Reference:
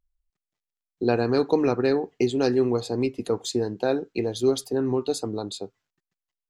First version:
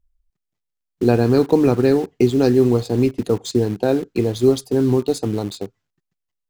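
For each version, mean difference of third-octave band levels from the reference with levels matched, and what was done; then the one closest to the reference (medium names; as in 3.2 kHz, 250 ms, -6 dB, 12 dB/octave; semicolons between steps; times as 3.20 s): 5.0 dB: bass shelf 320 Hz +11.5 dB; in parallel at -9 dB: bit crusher 5-bit; on the sum: trim -1 dB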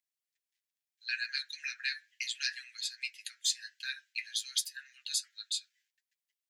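20.5 dB: steep high-pass 1.6 kHz 96 dB/octave; flange 0.79 Hz, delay 6.4 ms, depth 3.8 ms, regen +40%; trim +6.5 dB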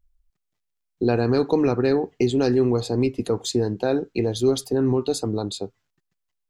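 1.5 dB: in parallel at +1 dB: peak limiter -18.5 dBFS, peak gain reduction 9.5 dB; on the sum: bass shelf 140 Hz +9 dB; trim -3.5 dB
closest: third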